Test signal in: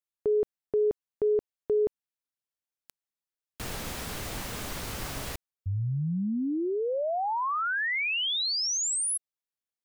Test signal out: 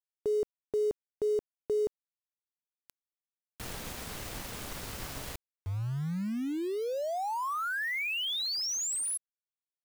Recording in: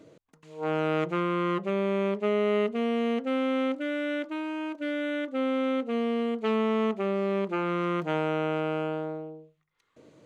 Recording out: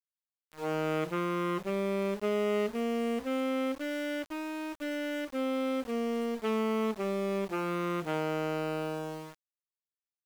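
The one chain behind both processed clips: sample gate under -37.5 dBFS; gain -4 dB

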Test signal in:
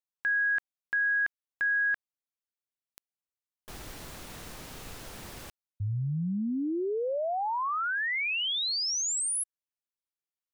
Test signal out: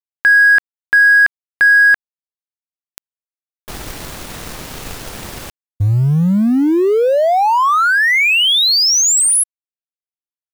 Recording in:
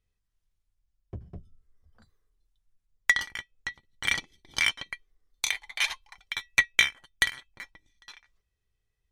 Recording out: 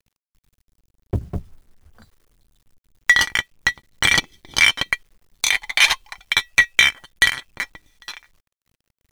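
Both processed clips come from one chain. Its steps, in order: G.711 law mismatch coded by A; maximiser +20 dB; gain -1 dB

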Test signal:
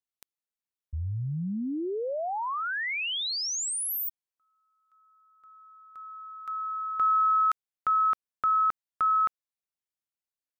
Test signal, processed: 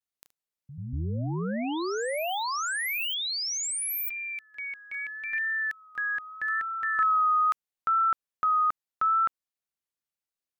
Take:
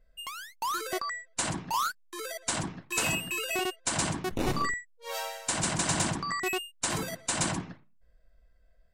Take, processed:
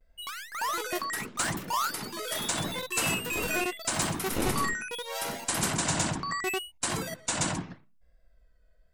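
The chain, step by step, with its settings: echoes that change speed 88 ms, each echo +5 st, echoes 2, each echo -6 dB; vibrato 0.78 Hz 60 cents

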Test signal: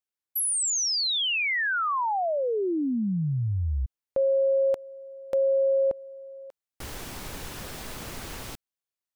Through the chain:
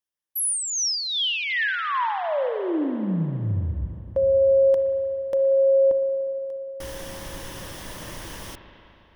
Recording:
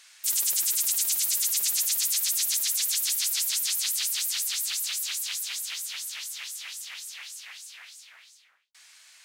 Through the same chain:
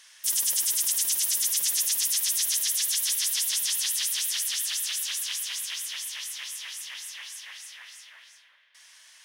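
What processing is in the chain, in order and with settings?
ripple EQ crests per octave 1.2, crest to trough 6 dB; spring tank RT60 3.2 s, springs 36/59 ms, chirp 60 ms, DRR 6.5 dB

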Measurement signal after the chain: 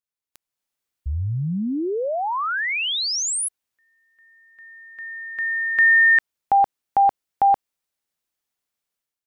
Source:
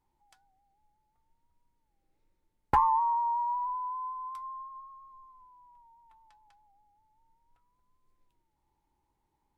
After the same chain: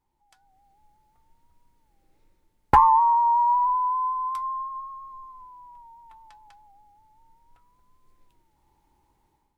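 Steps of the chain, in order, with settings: AGC gain up to 11 dB

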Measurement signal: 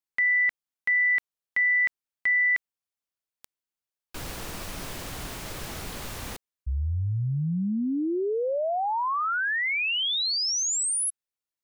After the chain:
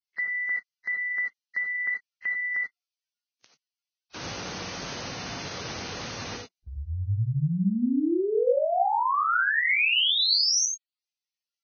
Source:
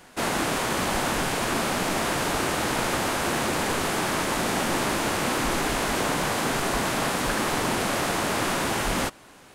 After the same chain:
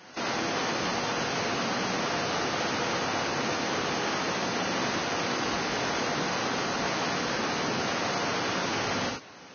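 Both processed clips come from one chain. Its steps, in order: HPF 120 Hz 12 dB/oct; limiter -23 dBFS; non-linear reverb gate 0.11 s rising, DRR 1.5 dB; Vorbis 16 kbps 16000 Hz

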